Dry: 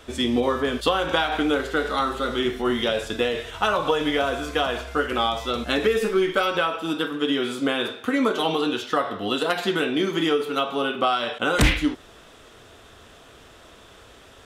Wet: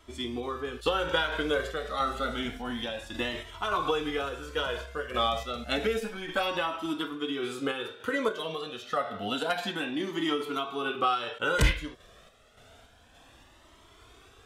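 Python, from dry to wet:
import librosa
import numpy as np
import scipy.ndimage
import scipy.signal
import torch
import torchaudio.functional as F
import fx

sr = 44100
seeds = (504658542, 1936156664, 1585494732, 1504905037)

p1 = fx.rider(x, sr, range_db=10, speed_s=0.5)
p2 = x + F.gain(torch.from_numpy(p1), -2.0).numpy()
p3 = fx.tremolo_random(p2, sr, seeds[0], hz=3.5, depth_pct=55)
p4 = fx.comb_cascade(p3, sr, direction='rising', hz=0.29)
y = F.gain(torch.from_numpy(p4), -5.0).numpy()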